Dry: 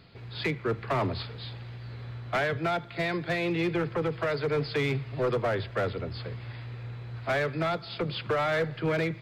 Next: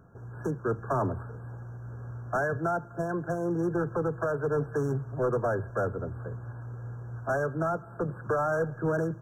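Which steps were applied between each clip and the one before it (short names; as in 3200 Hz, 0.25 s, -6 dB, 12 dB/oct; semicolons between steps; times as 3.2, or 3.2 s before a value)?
FFT band-reject 1700–5500 Hz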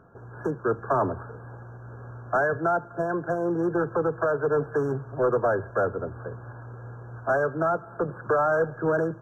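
tone controls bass -8 dB, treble -13 dB; gain +5.5 dB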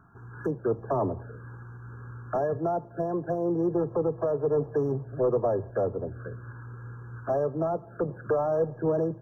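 envelope phaser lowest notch 510 Hz, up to 1500 Hz, full sweep at -25 dBFS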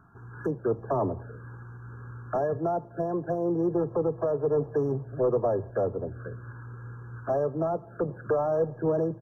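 downsampling 32000 Hz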